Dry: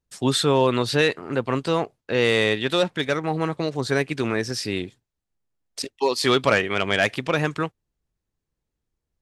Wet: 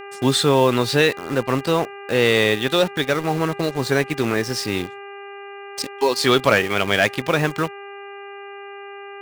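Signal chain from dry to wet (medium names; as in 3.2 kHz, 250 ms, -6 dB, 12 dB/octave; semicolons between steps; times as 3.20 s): in parallel at -3.5 dB: bit crusher 5-bit; on the sum: mains buzz 400 Hz, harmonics 7, -35 dBFS -4 dB/octave; trim -1.5 dB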